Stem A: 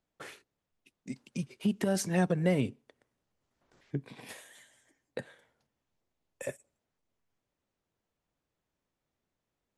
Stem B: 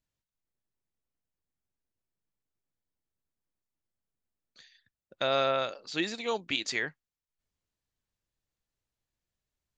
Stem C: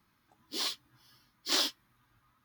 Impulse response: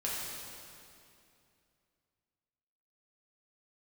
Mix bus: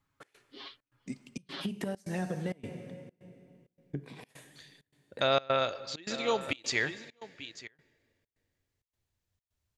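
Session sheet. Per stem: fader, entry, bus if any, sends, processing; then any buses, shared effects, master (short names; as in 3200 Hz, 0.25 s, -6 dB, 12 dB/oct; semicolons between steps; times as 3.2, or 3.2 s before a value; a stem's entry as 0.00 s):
-7.5 dB, 0.00 s, bus A, send -17.5 dB, no echo send, gate -59 dBFS, range -24 dB; AGC gain up to 7.5 dB; auto duck -11 dB, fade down 0.25 s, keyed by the second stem
+1.0 dB, 0.00 s, no bus, send -20 dB, echo send -14.5 dB, bell 92 Hz +12 dB 0.67 oct
-11.0 dB, 0.00 s, bus A, no send, echo send -19 dB, inverse Chebyshev low-pass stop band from 12000 Hz, stop band 70 dB; comb 7.3 ms, depth 87%
bus A: 0.0 dB, compressor 5:1, threshold -34 dBFS, peak gain reduction 11 dB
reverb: on, RT60 2.6 s, pre-delay 4 ms
echo: echo 0.891 s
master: step gate "xx.xxxx.xx" 131 bpm -24 dB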